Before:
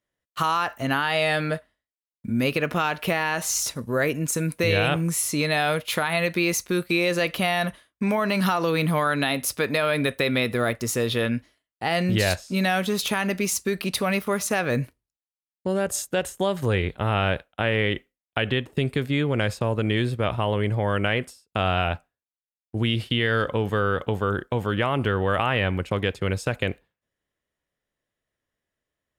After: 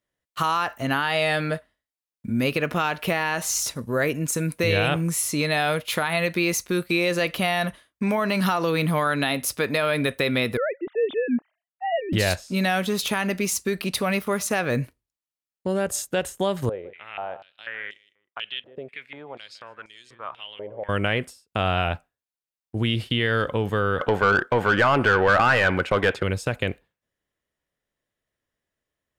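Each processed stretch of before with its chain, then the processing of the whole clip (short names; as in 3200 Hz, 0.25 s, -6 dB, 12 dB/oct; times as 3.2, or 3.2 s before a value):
10.57–12.13 sine-wave speech + LPF 1200 Hz 6 dB/oct
16.69–20.89 feedback echo 0.156 s, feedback 15%, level -14 dB + stepped band-pass 4.1 Hz 560–6200 Hz
23.99–26.23 bell 1500 Hz +7.5 dB 0.24 oct + overdrive pedal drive 19 dB, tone 1800 Hz, clips at -7.5 dBFS
whole clip: dry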